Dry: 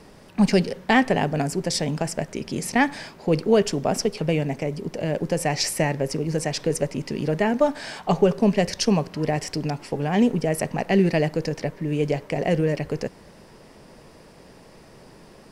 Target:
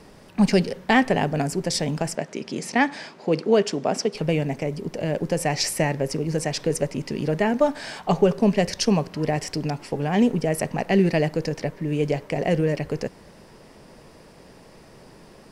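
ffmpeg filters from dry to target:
-filter_complex "[0:a]asettb=1/sr,asplit=3[a][b][c];[a]atrim=end=2.154[d];[b]atrim=start=2.15:end=4.15,asetpts=PTS-STARTPTS,afade=t=in:d=0.004:c=qsin,afade=t=out:st=1.996:d=0.004:c=qsin,highpass=190,lowpass=7.5k[e];[c]atrim=start=4.146[f];[d][e]acrossfade=d=0.004:c1=hsin:c2=qsin[g];[g][f]acrossfade=d=0.004:c1=qsin:c2=hsin"

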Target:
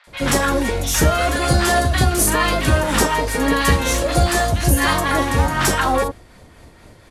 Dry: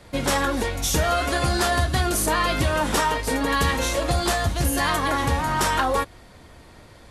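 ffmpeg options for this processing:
-filter_complex "[0:a]asplit=2[a][b];[b]aeval=exprs='sgn(val(0))*max(abs(val(0))-0.015,0)':c=same,volume=-5dB[c];[a][c]amix=inputs=2:normalize=0,tremolo=f=4.1:d=0.42,acrossover=split=980|3900[d][e][f];[f]adelay=40[g];[d]adelay=70[h];[h][e][g]amix=inputs=3:normalize=0,volume=4.5dB"

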